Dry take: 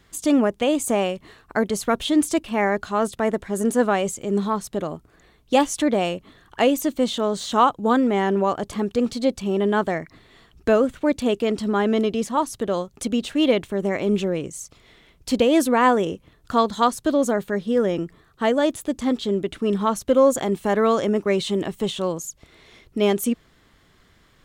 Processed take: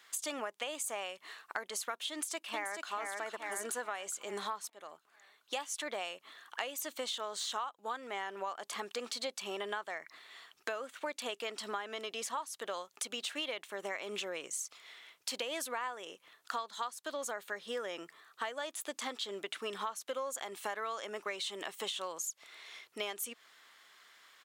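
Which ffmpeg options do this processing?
-filter_complex "[0:a]asplit=2[a][b];[b]afade=t=in:st=2.1:d=0.01,afade=t=out:st=2.93:d=0.01,aecho=0:1:430|860|1290|1720|2150|2580:0.630957|0.283931|0.127769|0.057496|0.0258732|0.0116429[c];[a][c]amix=inputs=2:normalize=0,asplit=2[d][e];[d]atrim=end=4.7,asetpts=PTS-STARTPTS,afade=t=out:st=4.696:d=0.004:c=hsin:silence=0.1[f];[e]atrim=start=4.7,asetpts=PTS-STARTPTS,afade=t=in:d=1.19:silence=0.1[g];[f][g]concat=n=2:v=0:a=1,highpass=1k,acompressor=threshold=-36dB:ratio=10,volume=1dB"

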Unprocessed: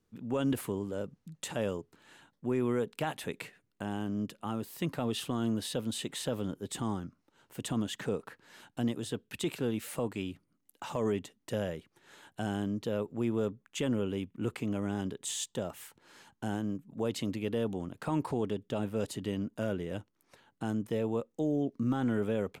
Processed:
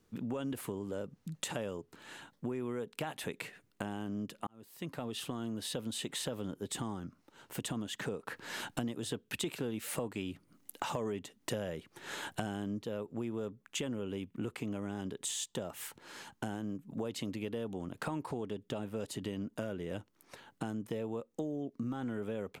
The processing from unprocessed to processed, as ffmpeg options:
-filter_complex "[0:a]asettb=1/sr,asplit=3[a][b][c];[a]atrim=end=8.284[d];[b]atrim=start=8.28:end=12.83,asetpts=PTS-STARTPTS,afade=t=in:d=0.004:c=qsin,afade=t=out:st=4.546:d=0.004:c=qsin,acontrast=75[e];[c]atrim=start=12.826[f];[d][e]acrossfade=d=0.004:c1=hsin:c2=qsin[g];[g][f]acrossfade=d=0.004:c1=qsin:c2=hsin,asplit=2[h][i];[h]atrim=end=4.47,asetpts=PTS-STARTPTS,afade=t=out:st=4.466:d=0.004:c=hsin[j];[i]atrim=start=4.47,asetpts=PTS-STARTPTS,afade=t=in:d=1.65[k];[j][k]concat=n=2:v=0:a=1,lowshelf=f=180:g=-3,acompressor=threshold=-43dB:ratio=6,volume=7.5dB"

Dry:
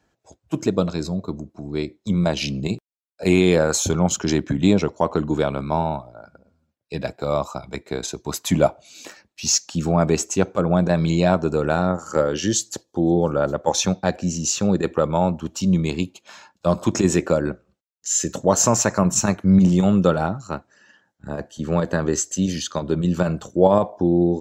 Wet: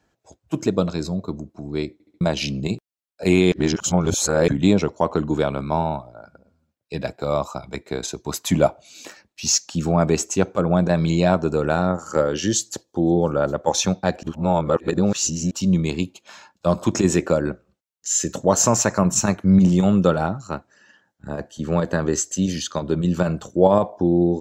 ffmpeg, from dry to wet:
-filter_complex "[0:a]asplit=9[a][b][c][d][e][f][g][h][i];[a]atrim=end=2.002[j];[b]atrim=start=1.928:end=2.002[k];[c]atrim=start=1.928:end=2.002[l];[d]atrim=start=1.928:end=2.002[m];[e]atrim=start=2.208:end=3.522[n];[f]atrim=start=3.518:end=4.482,asetpts=PTS-STARTPTS,areverse[o];[g]atrim=start=4.478:end=14.232[p];[h]atrim=start=14.228:end=15.512,asetpts=PTS-STARTPTS,areverse[q];[i]atrim=start=15.508[r];[j][k]acrossfade=d=0.004:c1=hsin:c2=hsin[s];[s][l]acrossfade=d=0.004:c1=hsin:c2=hsin[t];[t][m]acrossfade=d=0.004:c1=hsin:c2=hsin[u];[u][n]acrossfade=d=0.004:c1=hsin:c2=hsin[v];[v][o]acrossfade=d=0.004:c1=hsin:c2=hsin[w];[w][p]acrossfade=d=0.004:c1=hsin:c2=hsin[x];[x][q]acrossfade=d=0.004:c1=hsin:c2=hsin[y];[y][r]acrossfade=d=0.004:c1=hsin:c2=hsin"

